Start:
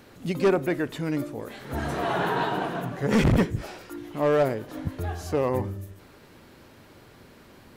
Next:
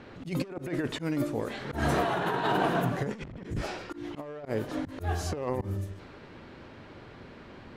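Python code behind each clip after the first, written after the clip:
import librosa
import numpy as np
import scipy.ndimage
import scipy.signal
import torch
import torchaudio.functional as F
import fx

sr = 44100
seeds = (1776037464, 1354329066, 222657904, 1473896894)

y = fx.over_compress(x, sr, threshold_db=-28.0, ratio=-0.5)
y = fx.env_lowpass(y, sr, base_hz=2900.0, full_db=-24.0)
y = fx.auto_swell(y, sr, attack_ms=129.0)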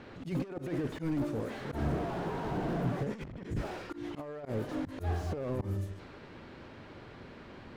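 y = fx.slew_limit(x, sr, full_power_hz=14.0)
y = y * librosa.db_to_amplitude(-1.5)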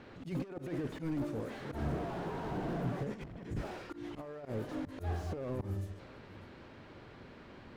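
y = x + 10.0 ** (-19.5 / 20.0) * np.pad(x, (int(599 * sr / 1000.0), 0))[:len(x)]
y = y * librosa.db_to_amplitude(-3.5)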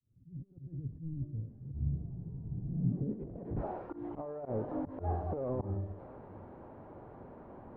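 y = fx.fade_in_head(x, sr, length_s=0.86)
y = fx.filter_sweep_lowpass(y, sr, from_hz=120.0, to_hz=820.0, start_s=2.66, end_s=3.57, q=1.9)
y = y * librosa.db_to_amplitude(1.0)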